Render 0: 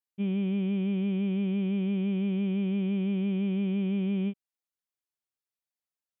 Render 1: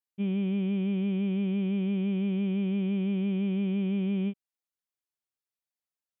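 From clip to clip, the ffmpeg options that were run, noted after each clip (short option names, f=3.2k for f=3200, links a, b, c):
-af anull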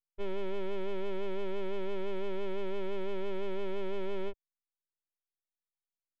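-af "aeval=exprs='abs(val(0))':c=same,anlmdn=0.00398,volume=-2.5dB"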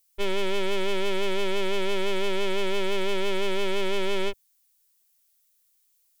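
-af "crystalizer=i=8.5:c=0,volume=7dB"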